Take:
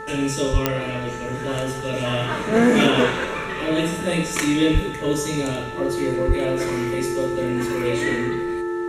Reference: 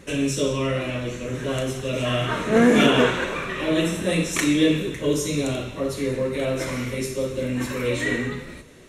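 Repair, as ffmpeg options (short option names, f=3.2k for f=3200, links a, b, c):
-filter_complex "[0:a]adeclick=t=4,bandreject=f=439.5:t=h:w=4,bandreject=f=879:t=h:w=4,bandreject=f=1.3185k:t=h:w=4,bandreject=f=1.758k:t=h:w=4,bandreject=f=350:w=30,asplit=3[a][b][c];[a]afade=t=out:st=0.52:d=0.02[d];[b]highpass=f=140:w=0.5412,highpass=f=140:w=1.3066,afade=t=in:st=0.52:d=0.02,afade=t=out:st=0.64:d=0.02[e];[c]afade=t=in:st=0.64:d=0.02[f];[d][e][f]amix=inputs=3:normalize=0,asplit=3[g][h][i];[g]afade=t=out:st=4.73:d=0.02[j];[h]highpass=f=140:w=0.5412,highpass=f=140:w=1.3066,afade=t=in:st=4.73:d=0.02,afade=t=out:st=4.85:d=0.02[k];[i]afade=t=in:st=4.85:d=0.02[l];[j][k][l]amix=inputs=3:normalize=0,asplit=3[m][n][o];[m]afade=t=out:st=6.27:d=0.02[p];[n]highpass=f=140:w=0.5412,highpass=f=140:w=1.3066,afade=t=in:st=6.27:d=0.02,afade=t=out:st=6.39:d=0.02[q];[o]afade=t=in:st=6.39:d=0.02[r];[p][q][r]amix=inputs=3:normalize=0"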